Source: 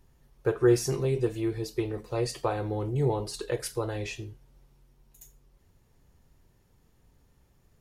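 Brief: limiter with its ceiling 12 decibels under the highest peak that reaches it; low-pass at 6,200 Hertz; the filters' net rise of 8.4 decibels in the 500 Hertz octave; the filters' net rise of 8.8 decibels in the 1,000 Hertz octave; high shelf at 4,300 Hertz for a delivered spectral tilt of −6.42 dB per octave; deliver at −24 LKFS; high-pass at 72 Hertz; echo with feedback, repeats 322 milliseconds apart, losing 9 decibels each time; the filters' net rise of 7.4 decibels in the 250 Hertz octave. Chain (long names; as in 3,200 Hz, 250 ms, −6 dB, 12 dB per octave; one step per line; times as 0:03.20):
high-pass filter 72 Hz
low-pass filter 6,200 Hz
parametric band 250 Hz +7 dB
parametric band 500 Hz +6.5 dB
parametric band 1,000 Hz +9 dB
high-shelf EQ 4,300 Hz −8 dB
brickwall limiter −15.5 dBFS
repeating echo 322 ms, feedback 35%, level −9 dB
level +2 dB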